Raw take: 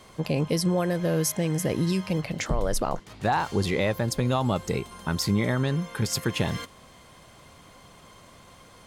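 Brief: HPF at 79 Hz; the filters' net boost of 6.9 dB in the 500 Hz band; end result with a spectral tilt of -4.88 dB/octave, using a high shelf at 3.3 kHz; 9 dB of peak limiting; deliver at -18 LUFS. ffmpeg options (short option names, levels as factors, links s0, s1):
-af "highpass=79,equalizer=f=500:t=o:g=8,highshelf=f=3300:g=3.5,volume=2.82,alimiter=limit=0.422:level=0:latency=1"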